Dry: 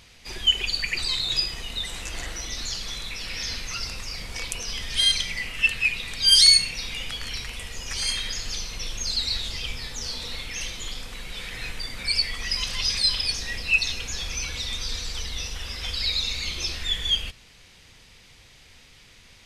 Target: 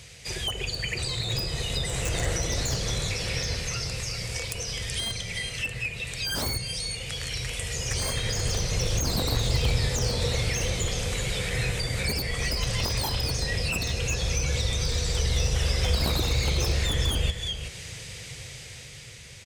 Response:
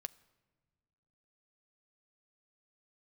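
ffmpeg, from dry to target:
-filter_complex "[0:a]equalizer=f=125:t=o:w=1:g=10,equalizer=f=250:t=o:w=1:g=-9,equalizer=f=500:t=o:w=1:g=8,equalizer=f=1k:t=o:w=1:g=-4,equalizer=f=2k:t=o:w=1:g=4,equalizer=f=8k:t=o:w=1:g=11,dynaudnorm=f=290:g=9:m=12dB,asplit=2[a][b];[b]aecho=0:1:378:0.282[c];[a][c]amix=inputs=2:normalize=0,aeval=exprs='0.266*(abs(mod(val(0)/0.266+3,4)-2)-1)':c=same,highpass=51,acrossover=split=620|1200[d][e][f];[d]lowshelf=f=440:g=4.5[g];[f]acompressor=threshold=-31dB:ratio=6[h];[g][e][h]amix=inputs=3:normalize=0"

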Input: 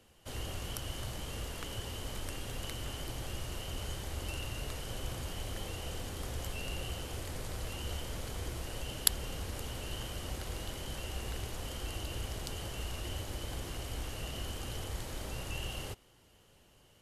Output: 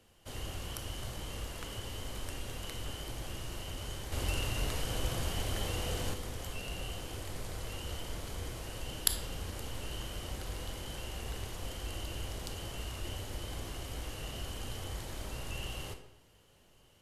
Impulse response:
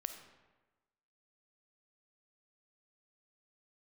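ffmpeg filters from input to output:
-filter_complex "[0:a]asettb=1/sr,asplit=3[a][b][c];[a]atrim=end=4.124[d];[b]atrim=start=4.12:end=6.14,asetpts=PTS-STARTPTS,afade=t=in:d=0.004:c=qsin,afade=t=out:st=2.016:d=0.004:c=qsin,acontrast=52[e];[c]atrim=start=6.136[f];[d][e]acrossfade=d=0.004:c1=hsin:c2=qsin[g];[g][f]acrossfade=d=0.004:c1=qsin:c2=hsin[h];[1:a]atrim=start_sample=2205,asetrate=70560,aresample=44100[i];[h][i]afir=irnorm=-1:irlink=0,volume=5dB"

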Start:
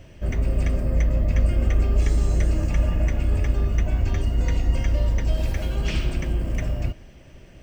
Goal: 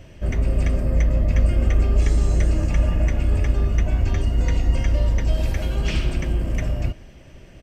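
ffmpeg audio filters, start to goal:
-af "aresample=32000,aresample=44100,volume=2dB"

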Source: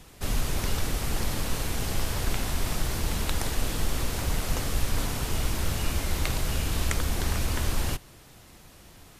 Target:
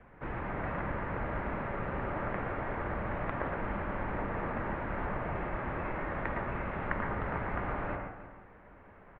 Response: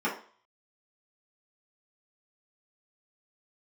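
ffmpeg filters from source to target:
-filter_complex "[0:a]asplit=2[a][b];[1:a]atrim=start_sample=2205,lowshelf=f=400:g=-9,adelay=108[c];[b][c]afir=irnorm=-1:irlink=0,volume=-11.5dB[d];[a][d]amix=inputs=2:normalize=0,highpass=f=210:t=q:w=0.5412,highpass=f=210:t=q:w=1.307,lowpass=f=2.2k:t=q:w=0.5176,lowpass=f=2.2k:t=q:w=0.7071,lowpass=f=2.2k:t=q:w=1.932,afreqshift=-270,asplit=2[e][f];[f]adelay=309,volume=-13dB,highshelf=f=4k:g=-6.95[g];[e][g]amix=inputs=2:normalize=0"

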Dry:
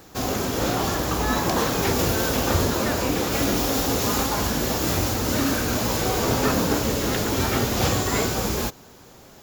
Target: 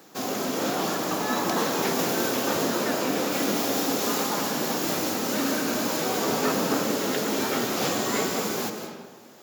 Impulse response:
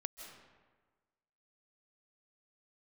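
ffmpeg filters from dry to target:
-filter_complex "[0:a]highpass=f=170:w=0.5412,highpass=f=170:w=1.3066[a];[1:a]atrim=start_sample=2205[b];[a][b]afir=irnorm=-1:irlink=0"

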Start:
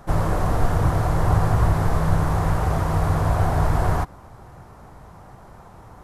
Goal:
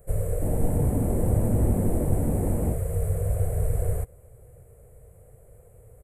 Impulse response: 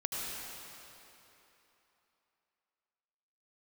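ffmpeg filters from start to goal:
-filter_complex "[0:a]firequalizer=gain_entry='entry(110,0);entry(180,-12);entry(300,-17);entry(470,6);entry(880,-25);entry(2200,-10);entry(3800,-23);entry(5500,-26);entry(7900,7)':delay=0.05:min_phase=1,asplit=3[a][b][c];[a]afade=t=out:st=0.41:d=0.02[d];[b]asplit=7[e][f][g][h][i][j][k];[f]adelay=153,afreqshift=130,volume=-7dB[l];[g]adelay=306,afreqshift=260,volume=-12.5dB[m];[h]adelay=459,afreqshift=390,volume=-18dB[n];[i]adelay=612,afreqshift=520,volume=-23.5dB[o];[j]adelay=765,afreqshift=650,volume=-29.1dB[p];[k]adelay=918,afreqshift=780,volume=-34.6dB[q];[e][l][m][n][o][p][q]amix=inputs=7:normalize=0,afade=t=in:st=0.41:d=0.02,afade=t=out:st=2.73:d=0.02[r];[c]afade=t=in:st=2.73:d=0.02[s];[d][r][s]amix=inputs=3:normalize=0,volume=-4dB"

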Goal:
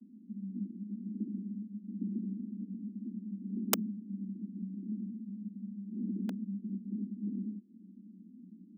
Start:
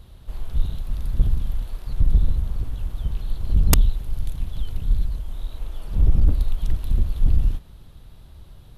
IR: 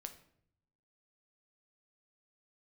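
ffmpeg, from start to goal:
-filter_complex "[0:a]acrossover=split=160|3000[a][b][c];[a]acompressor=threshold=-32dB:ratio=2.5[d];[d][b][c]amix=inputs=3:normalize=0,aeval=exprs='1*(cos(1*acos(clip(val(0)/1,-1,1)))-cos(1*PI/2))+0.141*(cos(3*acos(clip(val(0)/1,-1,1)))-cos(3*PI/2))+0.0562*(cos(6*acos(clip(val(0)/1,-1,1)))-cos(6*PI/2))':c=same,acrossover=split=160[e][f];[f]aeval=exprs='val(0)*gte(abs(val(0)),0.0376)':c=same[g];[e][g]amix=inputs=2:normalize=0,afreqshift=180,volume=-5dB"

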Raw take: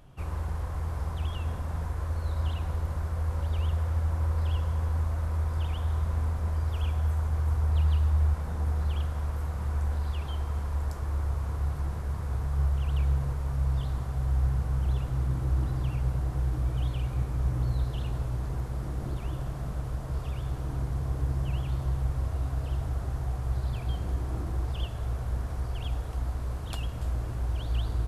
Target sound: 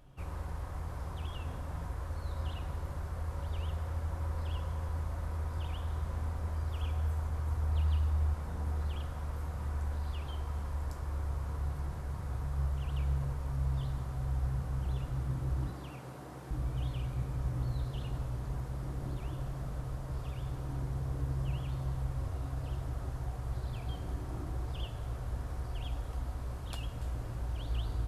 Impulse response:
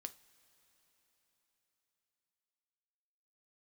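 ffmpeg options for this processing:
-filter_complex "[0:a]asettb=1/sr,asplit=3[a][b][c];[a]atrim=end=15.704[d];[b]atrim=start=15.7:end=16.51,asetpts=PTS-STARTPTS,afade=t=in:d=0.004:c=qsin,afade=t=out:st=0.806:d=0.004:c=qsin,highpass=f=180:w=0.5412,highpass=f=180:w=1.3066[e];[c]atrim=start=16.506[f];[d][e]acrossfade=d=0.004:c1=hsin:c2=qsin[g];[g][f]acrossfade=d=0.004:c1=qsin:c2=hsin[h];[1:a]atrim=start_sample=2205[i];[h][i]afir=irnorm=-1:irlink=0"

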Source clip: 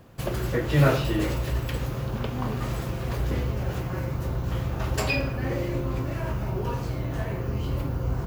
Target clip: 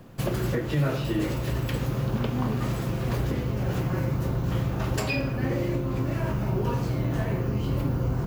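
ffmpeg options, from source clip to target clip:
-filter_complex "[0:a]equalizer=f=62:t=o:w=1.5:g=-12.5,acrossover=split=290[a][b];[a]acontrast=87[c];[c][b]amix=inputs=2:normalize=0,alimiter=limit=-18dB:level=0:latency=1:release=469,volume=1.5dB"

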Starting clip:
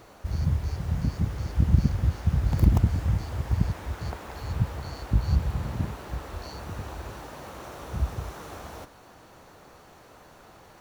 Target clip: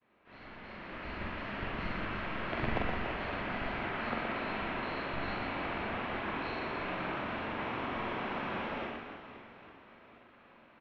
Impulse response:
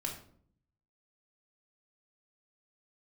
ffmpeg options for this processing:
-filter_complex "[0:a]aderivative,acrossover=split=490[a][b];[a]acontrast=86[c];[c][b]amix=inputs=2:normalize=0,highpass=f=270:t=q:w=0.5412,highpass=f=270:t=q:w=1.307,lowpass=f=2.9k:t=q:w=0.5176,lowpass=f=2.9k:t=q:w=0.7071,lowpass=f=2.9k:t=q:w=1.932,afreqshift=-210,agate=range=-33dB:threshold=-59dB:ratio=3:detection=peak,equalizer=f=220:w=3.5:g=5.5,asplit=2[d][e];[e]adelay=44,volume=-3.5dB[f];[d][f]amix=inputs=2:normalize=0,aecho=1:1:120|288|523.2|852.5|1313:0.631|0.398|0.251|0.158|0.1,asplit=2[g][h];[1:a]atrim=start_sample=2205[i];[h][i]afir=irnorm=-1:irlink=0,volume=-9dB[j];[g][j]amix=inputs=2:normalize=0,dynaudnorm=f=170:g=11:m=8dB,volume=7.5dB"

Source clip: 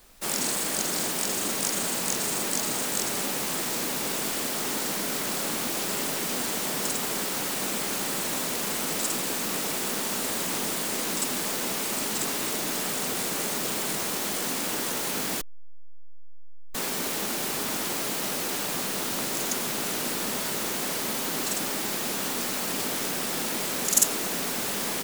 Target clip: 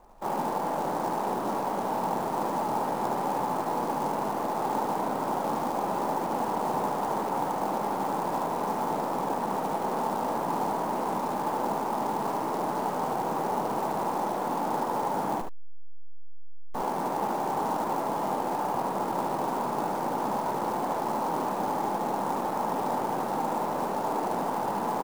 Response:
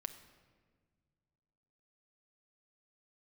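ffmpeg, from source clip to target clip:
-af "asoftclip=type=tanh:threshold=-18.5dB,lowpass=f=890:t=q:w=4.1,acrusher=bits=4:mode=log:mix=0:aa=0.000001,aecho=1:1:74:0.531"

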